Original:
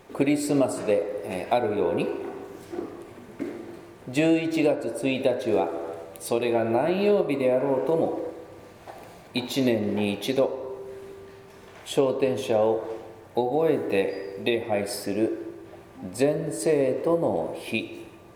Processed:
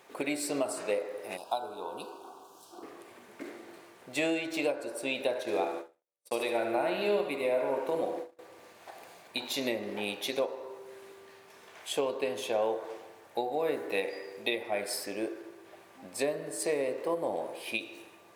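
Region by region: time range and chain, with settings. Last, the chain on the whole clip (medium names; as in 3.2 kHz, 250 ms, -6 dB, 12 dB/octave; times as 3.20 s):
1.37–2.83 s: Butterworth band-stop 2 kHz, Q 0.9 + resonant low shelf 680 Hz -7 dB, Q 1.5
5.28–8.39 s: feedback delay 73 ms, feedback 58%, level -9 dB + gate -32 dBFS, range -53 dB
whole clip: high-pass 910 Hz 6 dB/octave; endings held to a fixed fall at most 220 dB/s; trim -1.5 dB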